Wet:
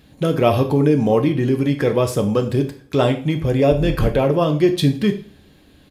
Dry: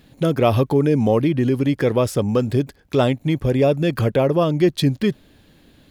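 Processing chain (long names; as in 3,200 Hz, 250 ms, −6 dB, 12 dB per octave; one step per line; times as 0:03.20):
0:03.71–0:04.11: sub-octave generator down 2 octaves, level +1 dB
coupled-rooms reverb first 0.4 s, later 1.6 s, from −27 dB, DRR 4.5 dB
downsampling to 32,000 Hz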